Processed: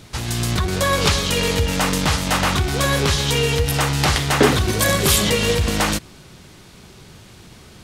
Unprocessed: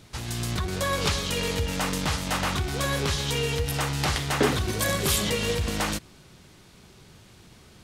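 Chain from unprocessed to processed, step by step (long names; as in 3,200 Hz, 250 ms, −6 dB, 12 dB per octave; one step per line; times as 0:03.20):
level +8 dB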